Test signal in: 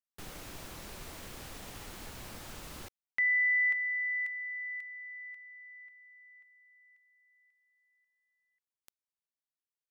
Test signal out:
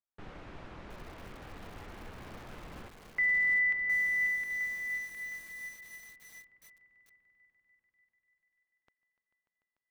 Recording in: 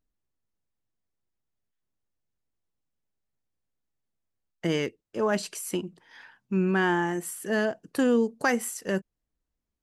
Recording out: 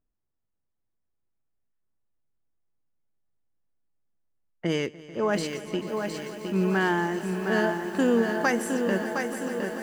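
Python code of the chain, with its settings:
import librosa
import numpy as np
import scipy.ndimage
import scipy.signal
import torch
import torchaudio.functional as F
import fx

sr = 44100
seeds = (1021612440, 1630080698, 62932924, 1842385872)

y = fx.env_lowpass(x, sr, base_hz=1700.0, full_db=-21.5)
y = fx.echo_swell(y, sr, ms=147, loudest=5, wet_db=-17.5)
y = fx.echo_crushed(y, sr, ms=712, feedback_pct=55, bits=8, wet_db=-5.5)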